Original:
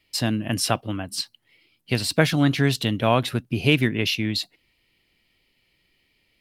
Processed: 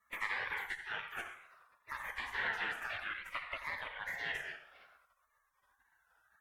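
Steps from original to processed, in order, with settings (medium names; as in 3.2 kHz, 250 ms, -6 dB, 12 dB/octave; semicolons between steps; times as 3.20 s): high-pass 180 Hz 12 dB/octave; compression 16:1, threshold -37 dBFS, peak gain reduction 25 dB; dynamic bell 3.4 kHz, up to +4 dB, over -50 dBFS, Q 0.71; on a send at -3.5 dB: reverberation RT60 0.95 s, pre-delay 4 ms; on the sum: wow and flutter 140 cents; spectral gate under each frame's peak -25 dB weak; valve stage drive 45 dB, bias 0.45; FFT filter 390 Hz 0 dB, 1.9 kHz +13 dB, 5.3 kHz -19 dB; bucket-brigade echo 85 ms, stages 2048, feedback 33%, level -13 dB; Shepard-style phaser falling 0.57 Hz; trim +15.5 dB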